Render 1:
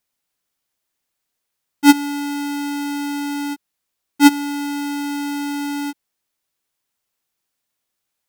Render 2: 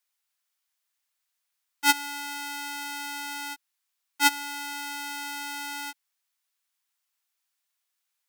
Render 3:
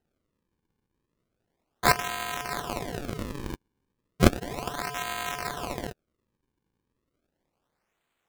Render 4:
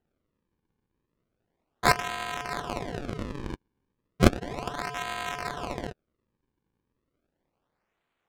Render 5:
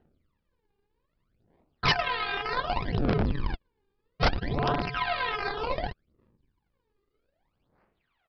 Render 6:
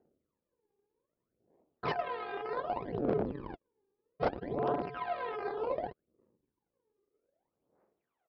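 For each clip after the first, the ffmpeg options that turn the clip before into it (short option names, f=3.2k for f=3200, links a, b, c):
-af "highpass=1k,volume=-2.5dB"
-af "lowshelf=f=340:t=q:w=3:g=-14,aeval=exprs='val(0)*sin(2*PI*150*n/s)':c=same,acrusher=samples=38:mix=1:aa=0.000001:lfo=1:lforange=60.8:lforate=0.34,volume=4.5dB"
-af "adynamicsmooth=sensitivity=2:basefreq=4.8k"
-af "aphaser=in_gain=1:out_gain=1:delay=2.5:decay=0.79:speed=0.64:type=sinusoidal,aresample=11025,aeval=exprs='0.168*(abs(mod(val(0)/0.168+3,4)-2)-1)':c=same,aresample=44100"
-af "bandpass=f=460:t=q:w=1.3:csg=0"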